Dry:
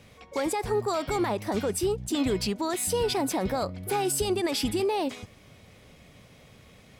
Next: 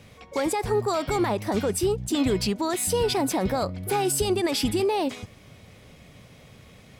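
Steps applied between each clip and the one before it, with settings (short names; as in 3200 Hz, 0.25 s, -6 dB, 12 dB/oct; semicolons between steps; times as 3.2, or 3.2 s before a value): bell 120 Hz +2.5 dB 1.4 oct; gain +2.5 dB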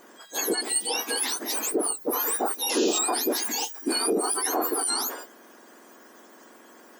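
spectrum mirrored in octaves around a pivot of 1900 Hz; limiter -19.5 dBFS, peak gain reduction 10.5 dB; painted sound noise, 2.69–2.99, 2400–7300 Hz -36 dBFS; gain +3.5 dB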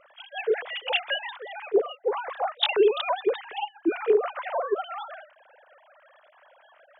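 sine-wave speech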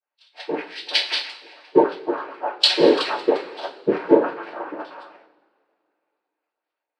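noise vocoder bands 8; two-slope reverb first 0.29 s, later 4.7 s, from -21 dB, DRR -2 dB; three-band expander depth 100%; gain -3 dB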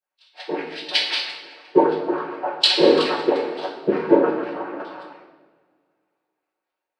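shoebox room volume 770 m³, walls mixed, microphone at 1 m; gain -1 dB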